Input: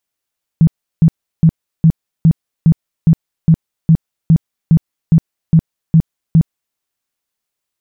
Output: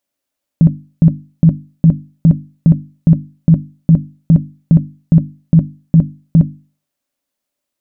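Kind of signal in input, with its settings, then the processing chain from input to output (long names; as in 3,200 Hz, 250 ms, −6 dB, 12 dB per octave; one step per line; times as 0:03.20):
tone bursts 162 Hz, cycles 10, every 0.41 s, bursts 15, −4 dBFS
mains-hum notches 50/100/150/200/250/300 Hz
hollow resonant body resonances 270/570 Hz, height 13 dB, ringing for 45 ms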